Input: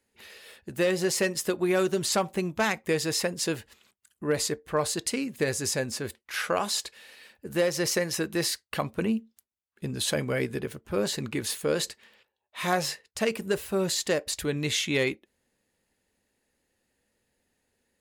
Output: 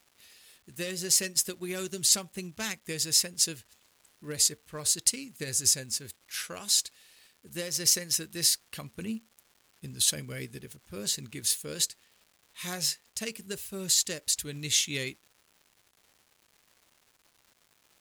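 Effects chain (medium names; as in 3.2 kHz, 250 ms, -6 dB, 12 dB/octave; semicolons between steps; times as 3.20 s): FFT filter 130 Hz 0 dB, 810 Hz -12 dB, 6.3 kHz +8 dB; crackle 430 per s -40 dBFS; upward expansion 1.5:1, over -38 dBFS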